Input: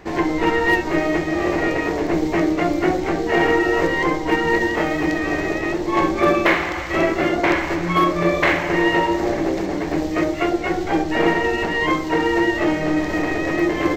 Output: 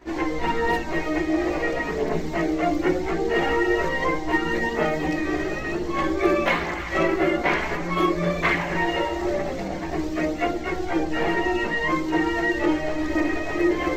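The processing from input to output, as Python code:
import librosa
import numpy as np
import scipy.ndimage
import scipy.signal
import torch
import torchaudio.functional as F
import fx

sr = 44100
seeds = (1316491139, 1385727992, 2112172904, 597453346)

y = fx.chorus_voices(x, sr, voices=4, hz=0.18, base_ms=16, depth_ms=3.1, mix_pct=70)
y = F.gain(torch.from_numpy(y), -2.0).numpy()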